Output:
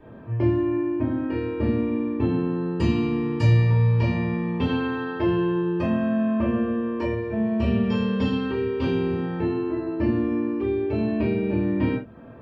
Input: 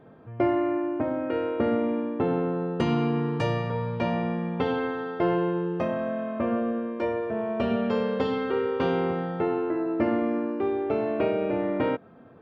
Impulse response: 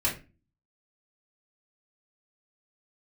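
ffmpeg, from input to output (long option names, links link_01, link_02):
-filter_complex "[1:a]atrim=start_sample=2205,afade=type=out:start_time=0.14:duration=0.01,atrim=end_sample=6615[link_01];[0:a][link_01]afir=irnorm=-1:irlink=0,acrossover=split=270|3000[link_02][link_03][link_04];[link_03]acompressor=threshold=-32dB:ratio=3[link_05];[link_02][link_05][link_04]amix=inputs=3:normalize=0,asettb=1/sr,asplit=3[link_06][link_07][link_08];[link_06]atrim=end=4.694[link_09];[link_07]atrim=start=4.69:end=7.15,asetpts=PTS-STARTPTS,afade=type=in:duration=0.004:curve=qsin,afade=type=out:start_time=2.456:duration=0.004:curve=qsin,equalizer=frequency=1000:width_type=o:width=2.9:gain=3[link_10];[link_08]atrim=start=7.146[link_11];[link_09][link_10]acrossfade=duration=0.004:curve1=hsin:curve2=qsin[link_12];[link_12][link_11]acrossfade=duration=0.004:curve1=qsin:curve2=hsin,volume=-2dB"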